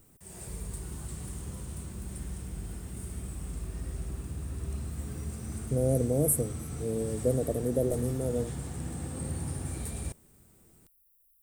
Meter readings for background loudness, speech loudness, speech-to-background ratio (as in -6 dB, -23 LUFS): -38.5 LUFS, -30.0 LUFS, 8.5 dB